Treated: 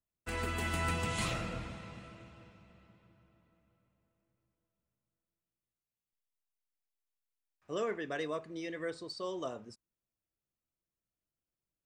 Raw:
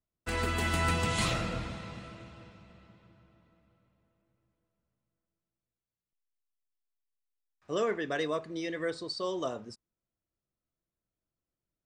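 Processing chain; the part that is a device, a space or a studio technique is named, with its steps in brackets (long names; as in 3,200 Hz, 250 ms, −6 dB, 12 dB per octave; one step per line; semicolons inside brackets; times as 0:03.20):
exciter from parts (in parallel at −11 dB: high-pass filter 2,300 Hz 24 dB per octave + soft clipping −30 dBFS, distortion −18 dB + high-pass filter 2,400 Hz 24 dB per octave)
on the sum: level −5 dB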